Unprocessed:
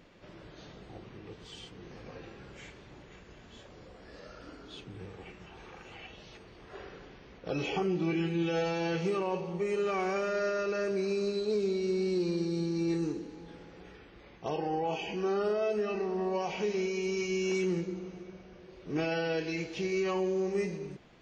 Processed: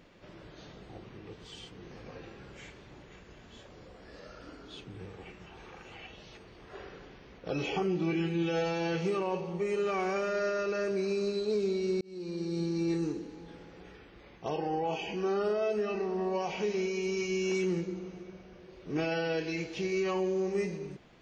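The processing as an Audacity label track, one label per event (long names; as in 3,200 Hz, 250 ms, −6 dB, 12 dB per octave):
12.010000	12.620000	fade in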